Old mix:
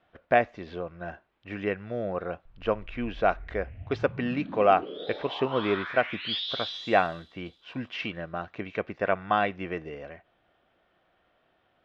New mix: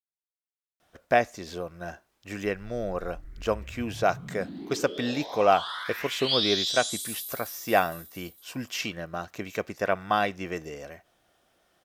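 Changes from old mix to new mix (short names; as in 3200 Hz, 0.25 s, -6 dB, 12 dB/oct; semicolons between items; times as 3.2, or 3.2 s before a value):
speech: entry +0.80 s; master: remove LPF 3200 Hz 24 dB/oct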